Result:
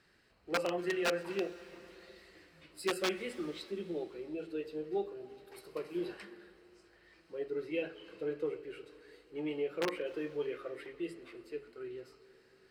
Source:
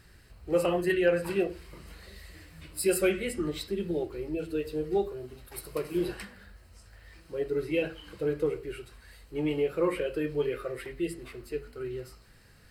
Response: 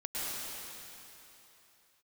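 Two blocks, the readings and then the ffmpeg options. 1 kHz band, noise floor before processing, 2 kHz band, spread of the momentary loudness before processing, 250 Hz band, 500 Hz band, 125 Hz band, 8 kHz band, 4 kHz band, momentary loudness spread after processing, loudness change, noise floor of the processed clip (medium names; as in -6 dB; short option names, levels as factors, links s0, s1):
-3.5 dB, -56 dBFS, -5.0 dB, 20 LU, -8.0 dB, -8.0 dB, -13.5 dB, -10.5 dB, -2.0 dB, 19 LU, -7.5 dB, -66 dBFS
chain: -filter_complex "[0:a]aeval=exprs='(mod(7.08*val(0)+1,2)-1)/7.08':c=same,acrossover=split=180 6300:gain=0.126 1 0.224[s0][s1][s2];[s0][s1][s2]amix=inputs=3:normalize=0,asplit=2[s3][s4];[1:a]atrim=start_sample=2205,adelay=131[s5];[s4][s5]afir=irnorm=-1:irlink=0,volume=0.0794[s6];[s3][s6]amix=inputs=2:normalize=0,volume=0.447"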